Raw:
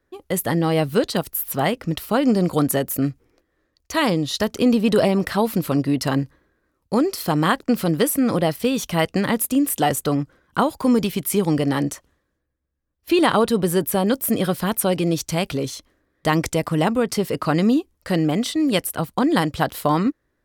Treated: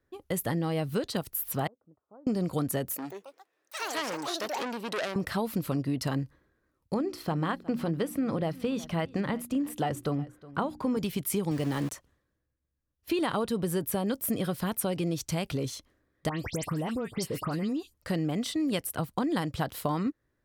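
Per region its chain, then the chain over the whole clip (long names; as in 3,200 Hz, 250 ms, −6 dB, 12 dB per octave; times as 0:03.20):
0:01.67–0:02.27: Gaussian smoothing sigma 11 samples + first difference
0:02.96–0:05.16: high-pass filter 410 Hz + delay with pitch and tempo change per echo 142 ms, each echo +6 semitones, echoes 3, each echo −6 dB + saturating transformer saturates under 3,100 Hz
0:06.94–0:10.97: low-pass filter 2,500 Hz 6 dB per octave + mains-hum notches 60/120/180/240/300/360 Hz + single-tap delay 363 ms −22 dB
0:11.51–0:11.92: high-pass filter 64 Hz + centre clipping without the shift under −28.5 dBFS
0:16.29–0:17.94: downward compressor 5 to 1, threshold −21 dBFS + all-pass dispersion highs, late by 111 ms, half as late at 3,000 Hz
whole clip: parametric band 110 Hz +5 dB 1.2 octaves; downward compressor 3 to 1, threshold −20 dBFS; level −6.5 dB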